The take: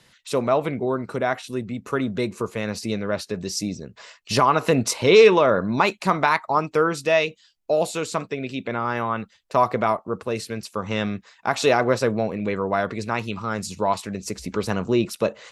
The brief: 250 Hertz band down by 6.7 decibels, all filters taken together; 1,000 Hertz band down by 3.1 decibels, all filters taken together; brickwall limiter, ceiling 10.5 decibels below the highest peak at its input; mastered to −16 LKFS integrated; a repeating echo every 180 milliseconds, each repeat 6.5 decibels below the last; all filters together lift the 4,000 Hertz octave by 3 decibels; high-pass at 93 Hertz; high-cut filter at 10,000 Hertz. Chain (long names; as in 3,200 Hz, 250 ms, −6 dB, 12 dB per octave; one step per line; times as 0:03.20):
high-pass filter 93 Hz
low-pass filter 10,000 Hz
parametric band 250 Hz −9 dB
parametric band 1,000 Hz −3.5 dB
parametric band 4,000 Hz +4 dB
brickwall limiter −14.5 dBFS
repeating echo 180 ms, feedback 47%, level −6.5 dB
level +11 dB